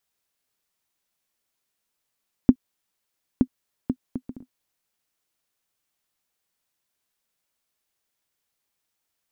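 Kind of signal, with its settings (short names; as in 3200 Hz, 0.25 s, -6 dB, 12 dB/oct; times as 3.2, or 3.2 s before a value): bouncing ball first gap 0.92 s, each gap 0.53, 254 Hz, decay 65 ms -1.5 dBFS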